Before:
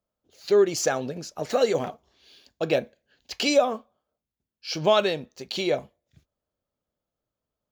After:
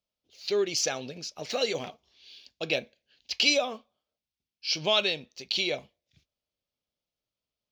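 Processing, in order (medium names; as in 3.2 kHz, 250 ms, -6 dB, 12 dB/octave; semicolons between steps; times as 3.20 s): high-order bell 3.6 kHz +12 dB; trim -8 dB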